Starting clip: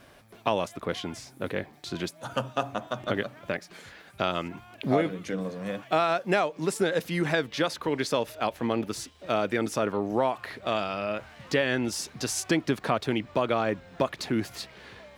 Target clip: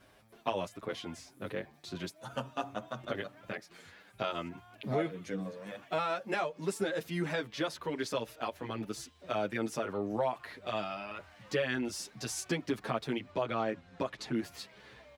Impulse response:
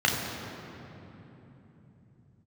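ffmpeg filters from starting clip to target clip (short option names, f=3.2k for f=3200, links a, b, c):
-filter_complex "[0:a]asettb=1/sr,asplit=3[a][b][c];[a]atrim=end=13.304[d];[b]atrim=start=13.3:end=14.35,asetpts=PTS-STARTPTS,afade=t=in:d=0.004:c=qsin,afade=t=out:st=1.046:d=0.004:c=qsin,lowpass=9.5k[e];[c]atrim=start=14.346[f];[d][e]acrossfade=d=0.004:c1=hsin:c2=qsin[g];[g][f]acrossfade=d=0.004:c1=qsin:c2=hsin,asplit=2[h][i];[i]adelay=7.8,afreqshift=1.5[j];[h][j]amix=inputs=2:normalize=1,volume=-4.5dB"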